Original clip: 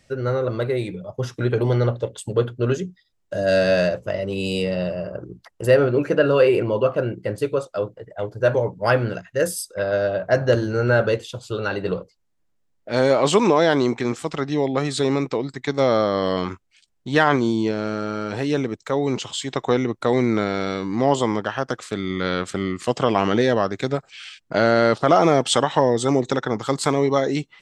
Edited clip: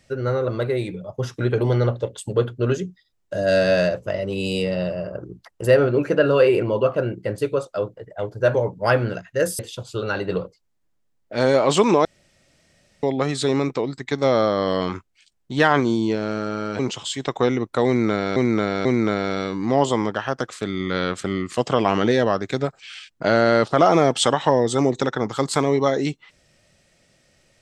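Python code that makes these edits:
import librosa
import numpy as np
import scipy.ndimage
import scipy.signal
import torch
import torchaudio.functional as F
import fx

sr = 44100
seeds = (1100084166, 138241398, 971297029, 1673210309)

y = fx.edit(x, sr, fx.cut(start_s=9.59, length_s=1.56),
    fx.room_tone_fill(start_s=13.61, length_s=0.98),
    fx.cut(start_s=18.35, length_s=0.72),
    fx.repeat(start_s=20.15, length_s=0.49, count=3), tone=tone)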